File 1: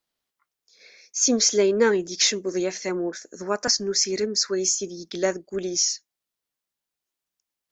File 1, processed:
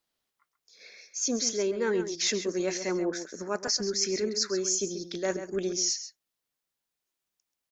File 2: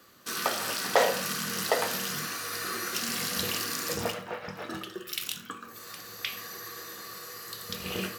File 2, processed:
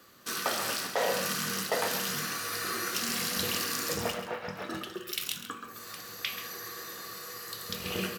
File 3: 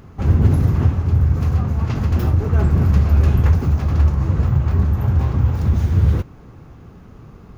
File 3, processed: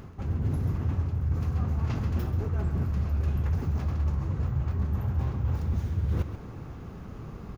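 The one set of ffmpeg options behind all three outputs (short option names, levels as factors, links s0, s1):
-filter_complex "[0:a]areverse,acompressor=threshold=0.0562:ratio=10,areverse,asplit=2[s0][s1];[s1]adelay=134.1,volume=0.316,highshelf=f=4000:g=-3.02[s2];[s0][s2]amix=inputs=2:normalize=0"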